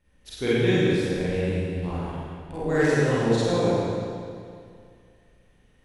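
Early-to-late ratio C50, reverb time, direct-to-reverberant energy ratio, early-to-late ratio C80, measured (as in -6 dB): -6.5 dB, 2.3 s, -11.0 dB, -3.5 dB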